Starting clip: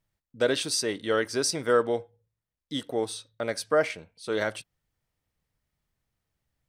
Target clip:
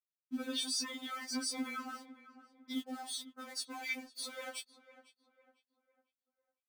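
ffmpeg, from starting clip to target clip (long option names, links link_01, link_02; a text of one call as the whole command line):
ffmpeg -i in.wav -filter_complex "[0:a]asoftclip=type=tanh:threshold=-25.5dB,asettb=1/sr,asplit=3[link_01][link_02][link_03];[link_01]atrim=end=1.814[link_04];[link_02]atrim=start=1.81:end=3.97,asetpts=PTS-STARTPTS,afade=type=in:duration=0.004:curve=qsin,afade=type=out:start_time=2.156:duration=0.004:curve=qsin,flanger=delay=4.9:depth=9.9:regen=42:speed=1.1:shape=triangular[link_05];[link_03]atrim=start=3.966[link_06];[link_04][link_05]acrossfade=duration=0.004:curve1=hsin:curve2=qsin[link_07];[link_07][link_06]acrossfade=duration=0.004:curve1=qsin:curve2=hsin,acompressor=threshold=-44dB:ratio=16,alimiter=level_in=17.5dB:limit=-24dB:level=0:latency=1:release=409,volume=-17.5dB,afftfilt=real='re*gte(hypot(re,im),0.00141)':imag='im*gte(hypot(re,im),0.00141)':win_size=1024:overlap=0.75,aecho=1:1:0.9:0.47,aeval=exprs='val(0)*gte(abs(val(0)),0.00119)':channel_layout=same,highpass=120,asplit=2[link_08][link_09];[link_09]adelay=502,lowpass=frequency=2100:poles=1,volume=-15.5dB,asplit=2[link_10][link_11];[link_11]adelay=502,lowpass=frequency=2100:poles=1,volume=0.42,asplit=2[link_12][link_13];[link_13]adelay=502,lowpass=frequency=2100:poles=1,volume=0.42,asplit=2[link_14][link_15];[link_15]adelay=502,lowpass=frequency=2100:poles=1,volume=0.42[link_16];[link_08][link_10][link_12][link_14][link_16]amix=inputs=5:normalize=0,afftfilt=real='re*3.46*eq(mod(b,12),0)':imag='im*3.46*eq(mod(b,12),0)':win_size=2048:overlap=0.75,volume=14.5dB" out.wav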